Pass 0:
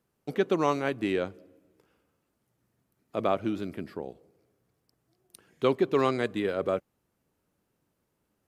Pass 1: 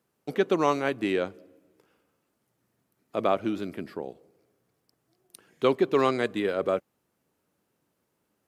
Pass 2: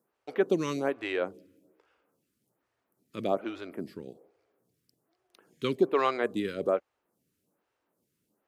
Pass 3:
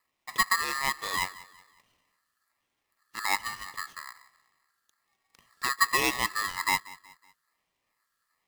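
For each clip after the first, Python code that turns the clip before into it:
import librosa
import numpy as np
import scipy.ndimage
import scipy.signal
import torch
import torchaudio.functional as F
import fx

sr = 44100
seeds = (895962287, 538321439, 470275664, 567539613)

y1 = fx.highpass(x, sr, hz=170.0, slope=6)
y1 = F.gain(torch.from_numpy(y1), 2.5).numpy()
y2 = fx.stagger_phaser(y1, sr, hz=1.2)
y3 = fx.echo_feedback(y2, sr, ms=185, feedback_pct=41, wet_db=-20.0)
y3 = y3 * np.sign(np.sin(2.0 * np.pi * 1500.0 * np.arange(len(y3)) / sr))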